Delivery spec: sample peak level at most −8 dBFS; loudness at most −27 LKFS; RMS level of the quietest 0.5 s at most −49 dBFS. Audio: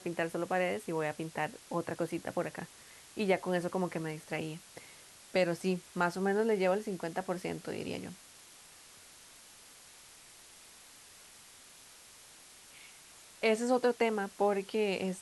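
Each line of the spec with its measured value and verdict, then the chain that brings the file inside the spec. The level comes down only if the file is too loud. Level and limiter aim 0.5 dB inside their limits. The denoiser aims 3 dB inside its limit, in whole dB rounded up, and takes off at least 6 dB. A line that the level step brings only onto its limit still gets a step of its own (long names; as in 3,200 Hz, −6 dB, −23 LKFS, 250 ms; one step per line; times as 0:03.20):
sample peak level −15.5 dBFS: in spec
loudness −33.5 LKFS: in spec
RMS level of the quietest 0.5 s −56 dBFS: in spec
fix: no processing needed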